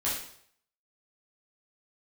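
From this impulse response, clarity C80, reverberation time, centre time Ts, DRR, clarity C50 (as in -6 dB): 7.0 dB, 0.65 s, 46 ms, -8.0 dB, 2.5 dB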